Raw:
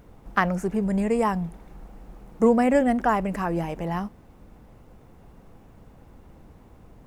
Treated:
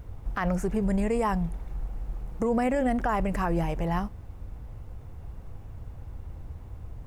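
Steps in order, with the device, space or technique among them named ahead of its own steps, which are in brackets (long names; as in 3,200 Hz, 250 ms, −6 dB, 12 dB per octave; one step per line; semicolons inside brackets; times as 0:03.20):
car stereo with a boomy subwoofer (low shelf with overshoot 140 Hz +10.5 dB, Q 1.5; brickwall limiter −17.5 dBFS, peak gain reduction 11 dB)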